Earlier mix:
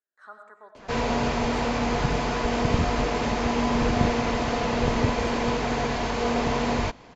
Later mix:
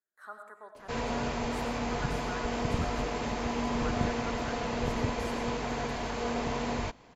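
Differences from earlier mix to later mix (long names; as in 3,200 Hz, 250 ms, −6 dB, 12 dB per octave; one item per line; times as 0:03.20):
background −7.5 dB
master: remove low-pass filter 7,100 Hz 24 dB per octave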